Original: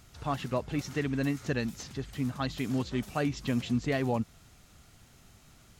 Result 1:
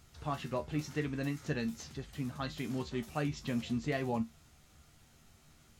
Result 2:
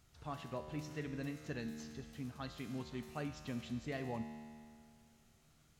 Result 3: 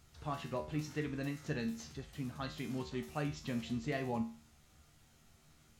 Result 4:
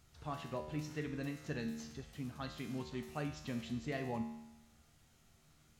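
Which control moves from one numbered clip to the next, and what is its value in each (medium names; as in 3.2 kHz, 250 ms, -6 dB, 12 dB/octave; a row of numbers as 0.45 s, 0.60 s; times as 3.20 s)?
feedback comb, decay: 0.17 s, 2.2 s, 0.4 s, 0.92 s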